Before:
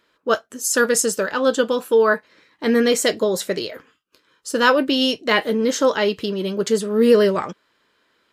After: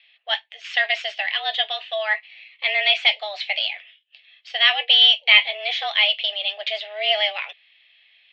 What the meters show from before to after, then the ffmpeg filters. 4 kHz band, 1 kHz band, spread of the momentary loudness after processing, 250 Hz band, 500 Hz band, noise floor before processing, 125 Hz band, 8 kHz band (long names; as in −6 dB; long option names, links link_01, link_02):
+10.0 dB, −5.0 dB, 13 LU, below −40 dB, −14.0 dB, −66 dBFS, below −40 dB, below −25 dB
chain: -af "aexciter=amount=15.3:drive=9.6:freq=2000,highpass=frequency=370:width_type=q:width=0.5412,highpass=frequency=370:width_type=q:width=1.307,lowpass=frequency=2800:width_type=q:width=0.5176,lowpass=frequency=2800:width_type=q:width=0.7071,lowpass=frequency=2800:width_type=q:width=1.932,afreqshift=210,volume=-11dB"